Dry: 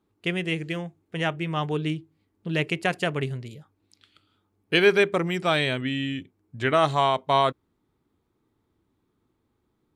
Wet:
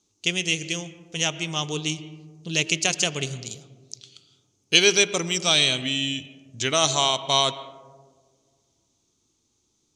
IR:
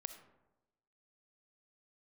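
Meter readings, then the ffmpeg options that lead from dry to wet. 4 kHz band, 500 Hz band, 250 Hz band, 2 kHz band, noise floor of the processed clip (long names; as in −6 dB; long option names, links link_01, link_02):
+10.0 dB, −3.0 dB, −2.5 dB, +1.0 dB, −71 dBFS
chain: -filter_complex "[0:a]aexciter=amount=9.1:drive=5:freq=2600,lowpass=frequency=6300:width_type=q:width=6.6,asplit=2[link_01][link_02];[1:a]atrim=start_sample=2205,asetrate=22050,aresample=44100,lowpass=2300[link_03];[link_02][link_03]afir=irnorm=-1:irlink=0,volume=-2dB[link_04];[link_01][link_04]amix=inputs=2:normalize=0,volume=-8dB"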